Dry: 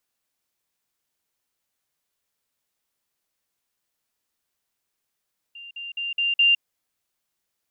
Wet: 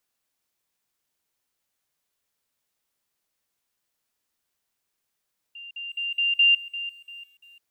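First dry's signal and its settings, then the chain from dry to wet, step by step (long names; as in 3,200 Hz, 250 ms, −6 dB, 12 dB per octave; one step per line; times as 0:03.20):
level staircase 2,790 Hz −38 dBFS, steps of 6 dB, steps 5, 0.16 s 0.05 s
feedback echo at a low word length 344 ms, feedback 35%, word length 9 bits, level −14.5 dB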